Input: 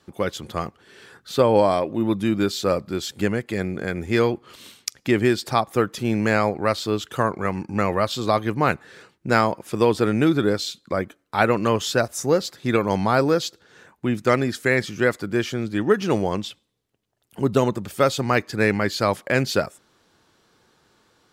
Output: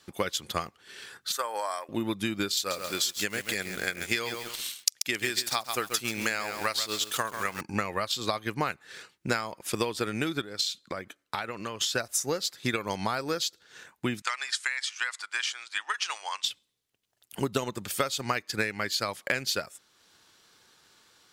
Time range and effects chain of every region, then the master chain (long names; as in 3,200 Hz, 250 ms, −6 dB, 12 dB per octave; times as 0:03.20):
0:01.32–0:01.89: high-pass filter 1,100 Hz + flat-topped bell 3,300 Hz −12.5 dB 1.3 octaves
0:02.57–0:07.61: spectral tilt +2 dB per octave + feedback echo at a low word length 135 ms, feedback 35%, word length 6 bits, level −8 dB
0:10.41–0:11.95: high-shelf EQ 8,100 Hz −5.5 dB + downward compressor 8 to 1, threshold −27 dBFS
0:14.22–0:16.44: Chebyshev band-pass filter 930–9,000 Hz, order 3 + downward compressor 2.5 to 1, threshold −27 dBFS
whole clip: tilt shelving filter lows −7 dB, about 1,300 Hz; downward compressor 6 to 1, threshold −26 dBFS; transient designer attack +4 dB, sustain −4 dB; level −1 dB